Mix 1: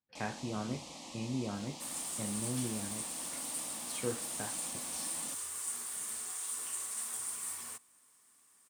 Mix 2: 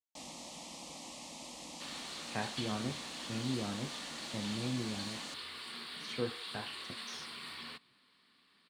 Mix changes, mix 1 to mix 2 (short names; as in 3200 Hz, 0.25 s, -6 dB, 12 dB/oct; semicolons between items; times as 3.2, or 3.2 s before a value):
speech: entry +2.15 s; second sound: add EQ curve 110 Hz 0 dB, 170 Hz +10 dB, 780 Hz -1 dB, 4400 Hz +12 dB, 6200 Hz -23 dB; master: add high shelf 11000 Hz +3.5 dB